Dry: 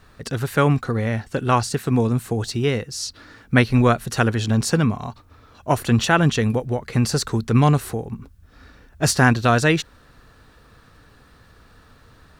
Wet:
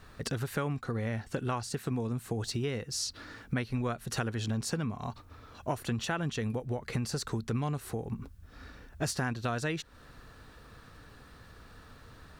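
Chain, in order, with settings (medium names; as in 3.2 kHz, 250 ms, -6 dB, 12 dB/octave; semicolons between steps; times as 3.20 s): compression 5:1, threshold -29 dBFS, peak gain reduction 16.5 dB; trim -2 dB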